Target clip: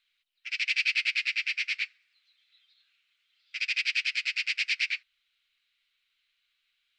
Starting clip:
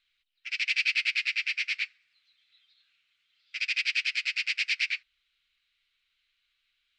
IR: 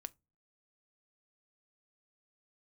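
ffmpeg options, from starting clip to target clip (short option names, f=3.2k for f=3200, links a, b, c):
-af "lowshelf=f=330:g=-10"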